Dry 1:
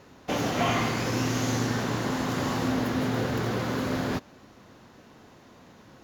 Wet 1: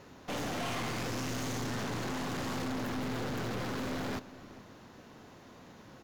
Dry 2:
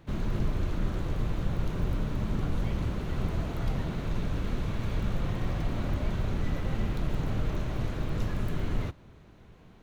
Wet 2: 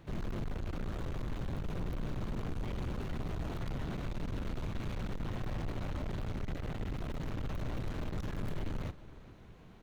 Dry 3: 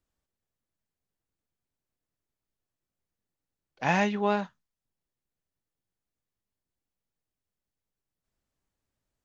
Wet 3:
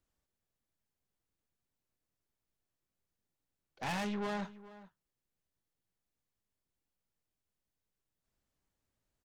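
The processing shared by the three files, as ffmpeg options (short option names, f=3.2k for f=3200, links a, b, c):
-filter_complex "[0:a]aeval=exprs='(tanh(50.1*val(0)+0.35)-tanh(0.35))/50.1':c=same,asplit=2[a][b];[b]adelay=419.8,volume=-17dB,highshelf=f=4k:g=-9.45[c];[a][c]amix=inputs=2:normalize=0"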